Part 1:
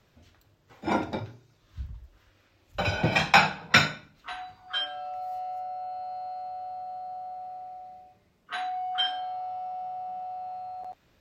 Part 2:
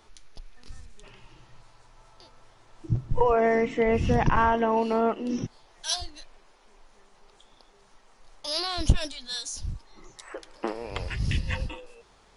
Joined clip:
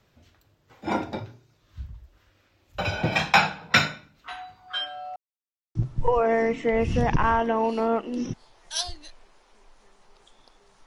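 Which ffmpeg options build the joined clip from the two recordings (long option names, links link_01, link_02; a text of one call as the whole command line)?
ffmpeg -i cue0.wav -i cue1.wav -filter_complex "[0:a]apad=whole_dur=10.86,atrim=end=10.86,asplit=2[link_01][link_02];[link_01]atrim=end=5.16,asetpts=PTS-STARTPTS,afade=type=out:start_time=5.156:duration=0.004:curve=hsin[link_03];[link_02]atrim=start=5.16:end=5.75,asetpts=PTS-STARTPTS,volume=0[link_04];[1:a]atrim=start=2.88:end=7.99,asetpts=PTS-STARTPTS,afade=type=in:duration=0.004:curve=hsin[link_05];[link_03][link_04][link_05]concat=n=3:v=0:a=1" out.wav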